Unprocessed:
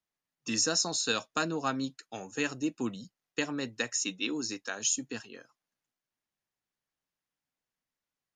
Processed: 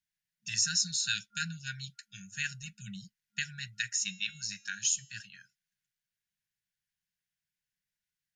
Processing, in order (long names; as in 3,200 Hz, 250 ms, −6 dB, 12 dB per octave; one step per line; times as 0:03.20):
0:03.91–0:05.17: hum removal 274.1 Hz, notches 29
brick-wall band-stop 210–1,400 Hz